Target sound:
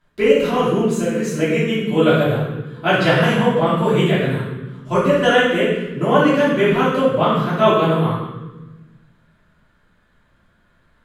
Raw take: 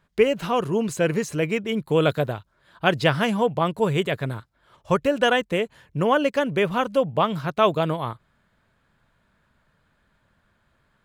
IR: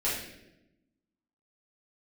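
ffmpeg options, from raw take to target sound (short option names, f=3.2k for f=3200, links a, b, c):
-filter_complex "[0:a]asettb=1/sr,asplit=3[a][b][c];[a]atrim=end=0.824[d];[b]atrim=start=0.82:end=1.23,asetpts=PTS-STARTPTS,afade=t=in:d=0.004:c=qsin,afade=t=out:st=0.406:d=0.004:c=qsin,acompressor=threshold=-25dB:ratio=4[e];[c]atrim=start=1.226[f];[d][e]acrossfade=d=0.004:c1=hsin:c2=qsin[g];[g][f]acrossfade=d=0.004:c1=qsin:c2=hsin[h];[1:a]atrim=start_sample=2205,asetrate=32193,aresample=44100[i];[h][i]afir=irnorm=-1:irlink=0,volume=-5dB"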